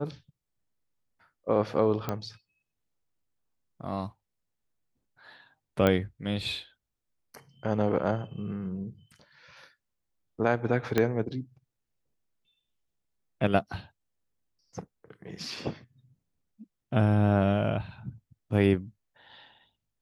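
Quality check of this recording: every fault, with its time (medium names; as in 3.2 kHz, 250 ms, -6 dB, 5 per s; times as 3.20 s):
2.09 s: pop -16 dBFS
5.87 s: pop -12 dBFS
10.98 s: pop -11 dBFS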